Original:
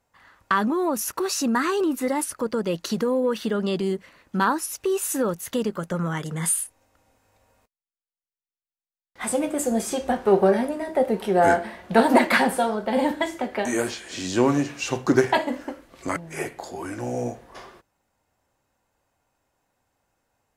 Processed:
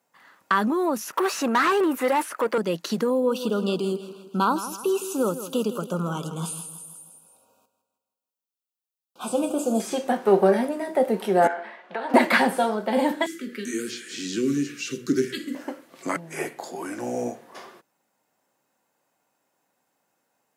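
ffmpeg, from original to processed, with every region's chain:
ffmpeg -i in.wav -filter_complex "[0:a]asettb=1/sr,asplit=3[link_01][link_02][link_03];[link_01]atrim=end=1.124[link_04];[link_02]atrim=start=1.12:end=2.58,asetpts=PTS-STARTPTS,afade=type=in:duration=0.004:curve=qsin,afade=type=out:start_time=1.456:duration=0.004:curve=qsin,highpass=frequency=390:poles=1,equalizer=frequency=4600:width_type=o:width=1.5:gain=-12,asplit=2[link_05][link_06];[link_06]highpass=frequency=720:poles=1,volume=19dB,asoftclip=type=tanh:threshold=-12.5dB[link_07];[link_05][link_07]amix=inputs=2:normalize=0,lowpass=frequency=4700:poles=1,volume=-6dB[link_08];[link_03]atrim=start=2.576[link_09];[link_04][link_08]acrossfade=duration=0.004:curve1=hsin:curve2=qsin[link_10];[link_10][link_09]acrossfade=duration=0.004:curve1=qsin:curve2=hsin,asettb=1/sr,asplit=3[link_11][link_12][link_13];[link_11]atrim=end=3.104[link_14];[link_12]atrim=start=3.1:end=9.8,asetpts=PTS-STARTPTS,afade=type=in:duration=0.004:curve=qsin,afade=type=out:start_time=6.696:duration=0.004:curve=qsin,asuperstop=centerf=1900:order=8:qfactor=1.9,aecho=1:1:161|322|483|644|805:0.237|0.111|0.0524|0.0246|0.0116,atrim=end_sample=295470[link_15];[link_13]atrim=start=9.796[link_16];[link_14][link_15]acrossfade=duration=0.004:curve1=hsin:curve2=qsin[link_17];[link_17][link_16]acrossfade=duration=0.004:curve1=qsin:curve2=hsin,asettb=1/sr,asplit=3[link_18][link_19][link_20];[link_18]atrim=end=11.474[link_21];[link_19]atrim=start=11.47:end=12.14,asetpts=PTS-STARTPTS,afade=type=in:duration=0.004:curve=qsin,afade=type=out:start_time=0.666:duration=0.004:curve=qsin,lowshelf=frequency=480:gain=-11,acompressor=threshold=-24dB:ratio=10:attack=3.2:release=140:knee=1:detection=peak,highpass=310,lowpass=2700[link_22];[link_20]atrim=start=12.136[link_23];[link_21][link_22]acrossfade=duration=0.004:curve1=hsin:curve2=qsin[link_24];[link_24][link_23]acrossfade=duration=0.004:curve1=qsin:curve2=hsin,asettb=1/sr,asplit=3[link_25][link_26][link_27];[link_25]atrim=end=13.264[link_28];[link_26]atrim=start=13.26:end=15.55,asetpts=PTS-STARTPTS,afade=type=in:duration=0.004:curve=qsin,afade=type=out:start_time=2.286:duration=0.004:curve=qsin,bandreject=frequency=60:width_type=h:width=6,bandreject=frequency=120:width_type=h:width=6,bandreject=frequency=180:width_type=h:width=6,bandreject=frequency=240:width_type=h:width=6,bandreject=frequency=300:width_type=h:width=6,bandreject=frequency=360:width_type=h:width=6,bandreject=frequency=420:width_type=h:width=6,bandreject=frequency=480:width_type=h:width=6,bandreject=frequency=540:width_type=h:width=6,acrossover=split=400|3000[link_29][link_30][link_31];[link_30]acompressor=threshold=-39dB:ratio=3:attack=3.2:release=140:knee=2.83:detection=peak[link_32];[link_29][link_32][link_31]amix=inputs=3:normalize=0,asuperstop=centerf=770:order=8:qfactor=0.94[link_33];[link_27]atrim=start=15.546[link_34];[link_28][link_33]acrossfade=duration=0.004:curve1=hsin:curve2=qsin[link_35];[link_35][link_34]acrossfade=duration=0.004:curve1=qsin:curve2=hsin,highpass=frequency=160:width=0.5412,highpass=frequency=160:width=1.3066,acrossover=split=5400[link_36][link_37];[link_37]acompressor=threshold=-41dB:ratio=4:attack=1:release=60[link_38];[link_36][link_38]amix=inputs=2:normalize=0,highshelf=frequency=11000:gain=7.5" out.wav

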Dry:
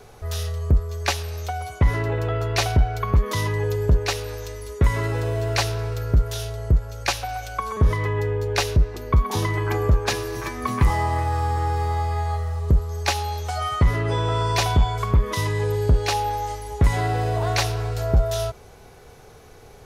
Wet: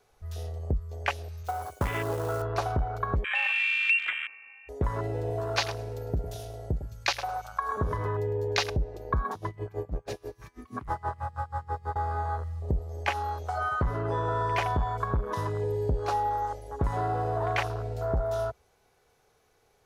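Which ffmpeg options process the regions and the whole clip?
ffmpeg -i in.wav -filter_complex "[0:a]asettb=1/sr,asplit=3[link_01][link_02][link_03];[link_01]atrim=end=1.434[link_04];[link_02]atrim=start=1.43:end=2.42,asetpts=PTS-STARTPTS,afade=type=in:duration=0.004:curve=qsin,afade=type=out:start_time=0.986:duration=0.004:curve=qsin,highpass=frequency=64:poles=1,acrusher=bits=2:mode=log:mix=0:aa=0.000001,adynamicequalizer=threshold=0.00398:dfrequency=5800:dqfactor=0.7:tfrequency=5800:tqfactor=0.7:attack=5:release=100:ratio=0.375:range=4:mode=boostabove:tftype=highshelf[link_05];[link_03]atrim=start=2.416[link_06];[link_04][link_05]acrossfade=duration=0.004:curve1=hsin:curve2=qsin[link_07];[link_07][link_06]acrossfade=duration=0.004:curve1=qsin:curve2=hsin,asettb=1/sr,asplit=3[link_08][link_09][link_10];[link_08]atrim=end=3.244[link_11];[link_09]atrim=start=3.24:end=4.69,asetpts=PTS-STARTPTS,afade=type=in:duration=0.004:curve=qsin,afade=type=out:start_time=1.446:duration=0.004:curve=qsin,highpass=frequency=50:poles=1,aeval=exprs='val(0)+0.01*sin(2*PI*960*n/s)':channel_layout=same,lowpass=frequency=2400:width_type=q:width=0.5098,lowpass=frequency=2400:width_type=q:width=0.6013,lowpass=frequency=2400:width_type=q:width=0.9,lowpass=frequency=2400:width_type=q:width=2.563,afreqshift=-2800[link_12];[link_10]atrim=start=4.686[link_13];[link_11][link_12]acrossfade=duration=0.004:curve1=hsin:curve2=qsin[link_14];[link_14][link_13]acrossfade=duration=0.004:curve1=qsin:curve2=hsin,asettb=1/sr,asplit=3[link_15][link_16][link_17];[link_15]atrim=end=5.304[link_18];[link_16]atrim=start=5.3:end=8.7,asetpts=PTS-STARTPTS,afade=type=in:duration=0.004:curve=qsin,afade=type=out:start_time=3.396:duration=0.004:curve=qsin,highpass=56,highshelf=frequency=6400:gain=6,aecho=1:1:104|208|312:0.266|0.0851|0.0272,atrim=end_sample=149940[link_19];[link_17]atrim=start=8.696[link_20];[link_18][link_19]acrossfade=duration=0.004:curve1=hsin:curve2=qsin[link_21];[link_21][link_20]acrossfade=duration=0.004:curve1=qsin:curve2=hsin,asettb=1/sr,asplit=3[link_22][link_23][link_24];[link_22]atrim=end=9.314[link_25];[link_23]atrim=start=9.31:end=11.96,asetpts=PTS-STARTPTS,afade=type=in:duration=0.004:curve=qsin,afade=type=out:start_time=2.646:duration=0.004:curve=qsin,asoftclip=type=hard:threshold=-16dB,aeval=exprs='val(0)*pow(10,-19*(0.5-0.5*cos(2*PI*6.2*n/s))/20)':channel_layout=same[link_26];[link_24]atrim=start=11.956[link_27];[link_25][link_26]acrossfade=duration=0.004:curve1=hsin:curve2=qsin[link_28];[link_28][link_27]acrossfade=duration=0.004:curve1=qsin:curve2=hsin,afwtdn=0.0501,lowshelf=frequency=370:gain=-9,acompressor=threshold=-24dB:ratio=2.5" out.wav

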